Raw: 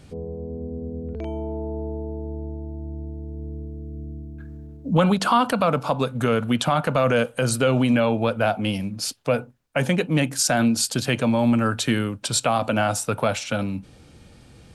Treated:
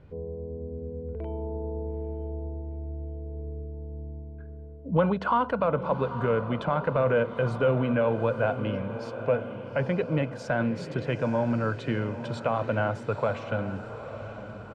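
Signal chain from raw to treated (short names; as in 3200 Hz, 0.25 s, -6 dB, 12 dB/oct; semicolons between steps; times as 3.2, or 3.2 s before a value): LPF 1700 Hz 12 dB/oct; comb 2 ms, depth 38%; on a send: diffused feedback echo 0.869 s, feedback 55%, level -11 dB; on the sum: gain -5 dB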